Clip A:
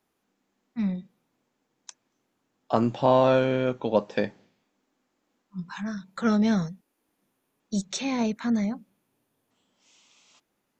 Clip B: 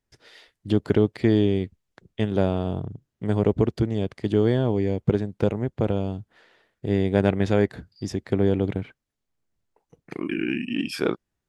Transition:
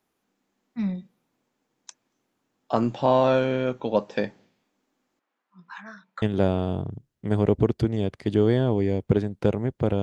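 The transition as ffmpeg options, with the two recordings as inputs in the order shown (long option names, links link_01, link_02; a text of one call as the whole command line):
ffmpeg -i cue0.wav -i cue1.wav -filter_complex "[0:a]asettb=1/sr,asplit=3[link_01][link_02][link_03];[link_01]atrim=end=5.194[link_04];[link_02]atrim=start=5.19:end=6.22,asetpts=PTS-STARTPTS,afade=type=in:duration=0.004:curve=qsin,afade=type=out:start_time=1.026:duration=0.004:curve=qsin,bandpass=frequency=1400:width_type=q:width=0.88:csg=0[link_05];[link_03]atrim=start=6.216[link_06];[link_04][link_05]acrossfade=duration=0.004:curve1=hsin:curve2=qsin[link_07];[link_07][link_06]acrossfade=duration=0.004:curve1=qsin:curve2=hsin,apad=whole_dur=10.02,atrim=end=10.02,atrim=end=6.222[link_08];[1:a]atrim=start=2.198:end=6[link_09];[link_08][link_09]acrossfade=duration=0.004:curve1=hsin:curve2=hsin" out.wav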